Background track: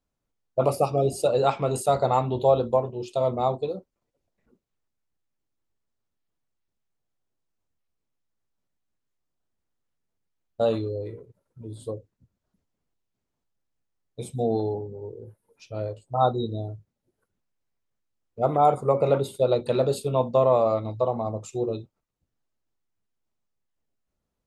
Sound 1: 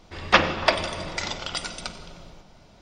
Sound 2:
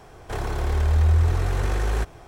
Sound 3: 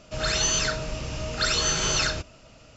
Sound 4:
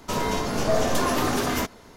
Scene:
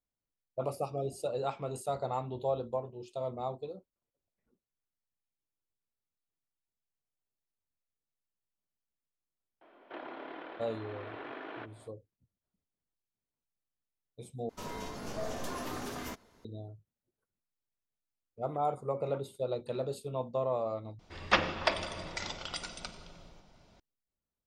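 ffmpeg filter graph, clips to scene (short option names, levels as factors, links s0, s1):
-filter_complex "[0:a]volume=0.237[s0];[2:a]highpass=f=390:t=q:w=0.5412,highpass=f=390:t=q:w=1.307,lowpass=f=3500:t=q:w=0.5176,lowpass=f=3500:t=q:w=0.7071,lowpass=f=3500:t=q:w=1.932,afreqshift=-88[s1];[s0]asplit=3[s2][s3][s4];[s2]atrim=end=14.494[s5];[4:a]atrim=end=1.96,asetpts=PTS-STARTPTS,volume=0.168[s6];[s3]atrim=start=16.446:end=20.994[s7];[1:a]atrim=end=2.81,asetpts=PTS-STARTPTS,volume=0.355[s8];[s4]atrim=start=23.796[s9];[s1]atrim=end=2.27,asetpts=PTS-STARTPTS,volume=0.299,afade=t=in:d=0.004:c=hsin,afade=t=out:st=2.266:d=0.004:c=hsin,adelay=9610[s10];[s5][s6]acrossfade=d=0.004:c1=hsin:c2=hsin[s11];[s11][s7]acrossfade=d=0.004:c1=hsin:c2=hsin[s12];[s12][s8]acrossfade=d=0.004:c1=hsin:c2=hsin[s13];[s13][s9]acrossfade=d=0.004:c1=hsin:c2=hsin[s14];[s14][s10]amix=inputs=2:normalize=0"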